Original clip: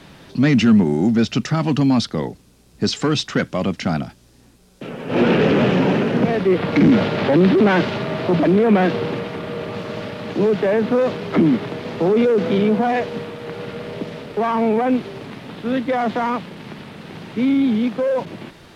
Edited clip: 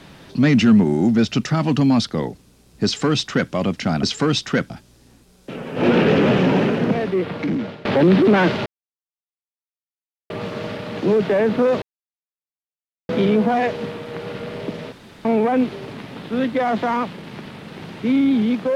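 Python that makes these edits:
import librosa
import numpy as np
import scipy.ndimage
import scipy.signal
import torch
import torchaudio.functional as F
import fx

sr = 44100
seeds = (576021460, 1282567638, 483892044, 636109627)

y = fx.edit(x, sr, fx.duplicate(start_s=2.85, length_s=0.67, to_s=4.03),
    fx.fade_out_to(start_s=5.98, length_s=1.2, floor_db=-21.0),
    fx.silence(start_s=7.99, length_s=1.64),
    fx.silence(start_s=11.15, length_s=1.27),
    fx.room_tone_fill(start_s=14.25, length_s=0.33), tone=tone)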